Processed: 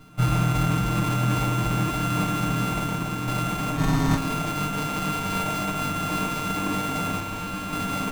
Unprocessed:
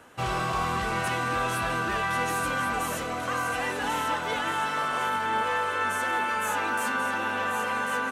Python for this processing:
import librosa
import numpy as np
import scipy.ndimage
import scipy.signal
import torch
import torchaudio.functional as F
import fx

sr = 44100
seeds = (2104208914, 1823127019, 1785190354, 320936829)

y = np.r_[np.sort(x[:len(x) // 64 * 64].reshape(-1, 64), axis=1).ravel(), x[len(x) // 64 * 64:]]
y = fx.low_shelf(y, sr, hz=110.0, db=-9.0)
y = fx.sample_hold(y, sr, seeds[0], rate_hz=1800.0, jitter_pct=0, at=(3.76, 4.16), fade=0.02)
y = y + 0.91 * np.pad(y, (int(6.6 * sr / 1000.0), 0))[:len(y)]
y = fx.overload_stage(y, sr, gain_db=30.0, at=(7.2, 7.73))
y = fx.low_shelf(y, sr, hz=280.0, db=11.5)
y = fx.fixed_phaser(y, sr, hz=1100.0, stages=4)
y = fx.echo_feedback(y, sr, ms=112, feedback_pct=55, wet_db=-10.5)
y = fx.running_max(y, sr, window=17)
y = y * 10.0 ** (5.5 / 20.0)